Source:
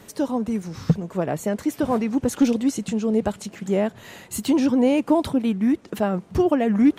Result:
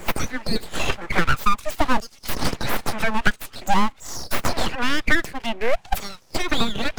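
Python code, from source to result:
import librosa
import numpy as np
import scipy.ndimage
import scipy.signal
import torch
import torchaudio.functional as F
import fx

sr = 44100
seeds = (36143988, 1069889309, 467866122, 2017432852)

y = fx.noise_reduce_blind(x, sr, reduce_db=14)
y = fx.filter_lfo_highpass(y, sr, shape='saw_down', hz=0.5, low_hz=340.0, high_hz=3700.0, q=4.8)
y = np.abs(y)
y = fx.band_squash(y, sr, depth_pct=100)
y = F.gain(torch.from_numpy(y), 6.0).numpy()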